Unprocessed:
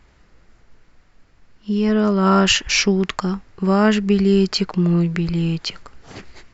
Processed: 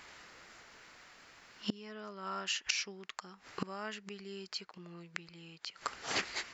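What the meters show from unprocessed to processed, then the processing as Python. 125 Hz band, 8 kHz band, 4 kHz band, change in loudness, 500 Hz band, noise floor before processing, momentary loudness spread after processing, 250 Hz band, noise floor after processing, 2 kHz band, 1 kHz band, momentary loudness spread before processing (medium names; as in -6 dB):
-31.5 dB, no reading, -16.0 dB, -22.0 dB, -26.0 dB, -55 dBFS, 20 LU, -29.0 dB, -63 dBFS, -15.0 dB, -18.5 dB, 10 LU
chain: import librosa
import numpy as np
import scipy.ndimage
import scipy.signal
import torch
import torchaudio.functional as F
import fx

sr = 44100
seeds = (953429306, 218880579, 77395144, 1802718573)

y = fx.gate_flip(x, sr, shuts_db=-16.0, range_db=-27)
y = fx.highpass(y, sr, hz=1300.0, slope=6)
y = F.gain(torch.from_numpy(y), 9.0).numpy()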